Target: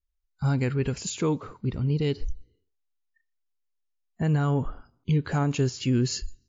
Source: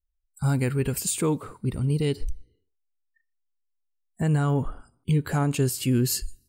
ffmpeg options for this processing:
ffmpeg -i in.wav -af "volume=-1dB" -ar 16000 -c:a wmav2 -b:a 64k out.wma

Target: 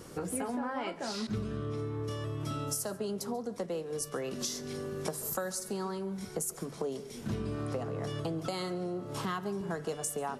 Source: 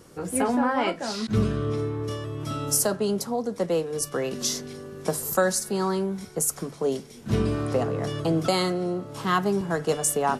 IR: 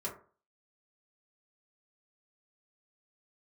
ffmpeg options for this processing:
-filter_complex "[0:a]acompressor=threshold=-36dB:ratio=6,asplit=2[link_01][link_02];[1:a]atrim=start_sample=2205,adelay=136[link_03];[link_02][link_03]afir=irnorm=-1:irlink=0,volume=-19dB[link_04];[link_01][link_04]amix=inputs=2:normalize=0,volume=2.5dB"

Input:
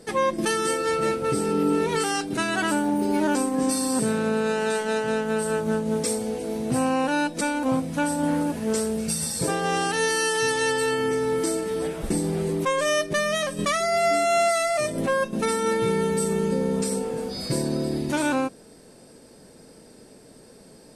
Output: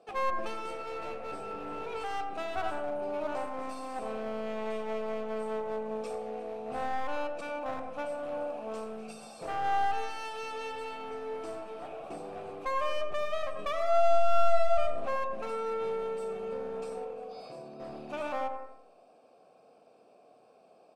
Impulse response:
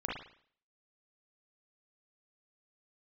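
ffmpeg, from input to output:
-filter_complex "[0:a]asplit=3[link_01][link_02][link_03];[link_01]afade=type=out:start_time=17.04:duration=0.02[link_04];[link_02]acompressor=threshold=-28dB:ratio=6,afade=type=in:start_time=17.04:duration=0.02,afade=type=out:start_time=17.79:duration=0.02[link_05];[link_03]afade=type=in:start_time=17.79:duration=0.02[link_06];[link_04][link_05][link_06]amix=inputs=3:normalize=0,asplit=3[link_07][link_08][link_09];[link_07]bandpass=frequency=730:width_type=q:width=8,volume=0dB[link_10];[link_08]bandpass=frequency=1090:width_type=q:width=8,volume=-6dB[link_11];[link_09]bandpass=frequency=2440:width_type=q:width=8,volume=-9dB[link_12];[link_10][link_11][link_12]amix=inputs=3:normalize=0,aeval=exprs='clip(val(0),-1,0.00944)':channel_layout=same,asplit=2[link_13][link_14];[link_14]adelay=87,lowpass=frequency=1500:poles=1,volume=-7.5dB,asplit=2[link_15][link_16];[link_16]adelay=87,lowpass=frequency=1500:poles=1,volume=0.45,asplit=2[link_17][link_18];[link_18]adelay=87,lowpass=frequency=1500:poles=1,volume=0.45,asplit=2[link_19][link_20];[link_20]adelay=87,lowpass=frequency=1500:poles=1,volume=0.45,asplit=2[link_21][link_22];[link_22]adelay=87,lowpass=frequency=1500:poles=1,volume=0.45[link_23];[link_13][link_15][link_17][link_19][link_21][link_23]amix=inputs=6:normalize=0,asplit=2[link_24][link_25];[1:a]atrim=start_sample=2205,afade=type=out:start_time=0.24:duration=0.01,atrim=end_sample=11025,asetrate=26019,aresample=44100[link_26];[link_25][link_26]afir=irnorm=-1:irlink=0,volume=-10.5dB[link_27];[link_24][link_27]amix=inputs=2:normalize=0"

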